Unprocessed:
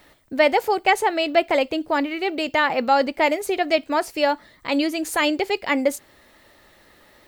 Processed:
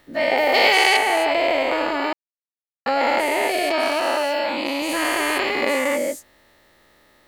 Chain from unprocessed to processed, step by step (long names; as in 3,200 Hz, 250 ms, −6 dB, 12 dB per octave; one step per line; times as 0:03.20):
every bin's largest magnitude spread in time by 480 ms
0:00.54–0:00.97: parametric band 4,200 Hz +13 dB 1.6 octaves
0:02.13–0:02.86: silence
0:04.01–0:04.82: Bessel high-pass filter 170 Hz, order 2
level −9 dB